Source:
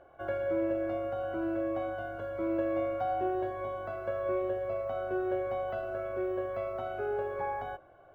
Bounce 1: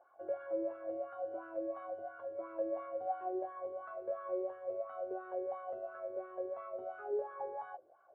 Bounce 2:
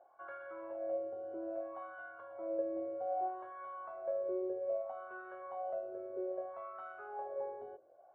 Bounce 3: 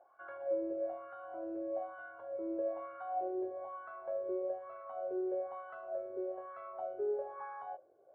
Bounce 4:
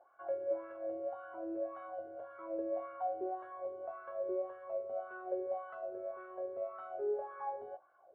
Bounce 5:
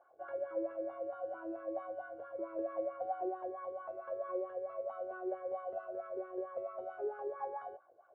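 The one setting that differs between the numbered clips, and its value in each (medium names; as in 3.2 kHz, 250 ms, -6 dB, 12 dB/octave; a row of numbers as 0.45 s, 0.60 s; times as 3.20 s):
wah-wah, rate: 2.9 Hz, 0.62 Hz, 1.1 Hz, 1.8 Hz, 4.5 Hz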